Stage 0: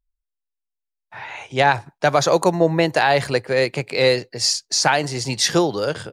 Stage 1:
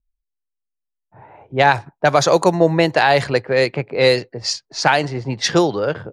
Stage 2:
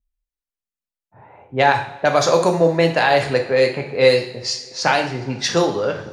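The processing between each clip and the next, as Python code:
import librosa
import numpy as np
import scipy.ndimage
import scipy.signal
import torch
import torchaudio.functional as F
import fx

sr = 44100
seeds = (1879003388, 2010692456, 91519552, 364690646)

y1 = fx.env_lowpass(x, sr, base_hz=340.0, full_db=-12.0)
y1 = y1 * 10.0 ** (2.5 / 20.0)
y2 = fx.rev_double_slope(y1, sr, seeds[0], early_s=0.55, late_s=3.0, knee_db=-21, drr_db=3.0)
y2 = y2 * 10.0 ** (-3.0 / 20.0)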